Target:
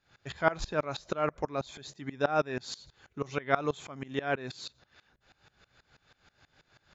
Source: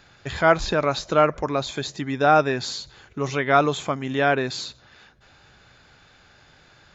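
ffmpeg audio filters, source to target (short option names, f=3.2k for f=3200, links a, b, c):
-af "aeval=exprs='val(0)*pow(10,-22*if(lt(mod(-6.2*n/s,1),2*abs(-6.2)/1000),1-mod(-6.2*n/s,1)/(2*abs(-6.2)/1000),(mod(-6.2*n/s,1)-2*abs(-6.2)/1000)/(1-2*abs(-6.2)/1000))/20)':c=same,volume=-4dB"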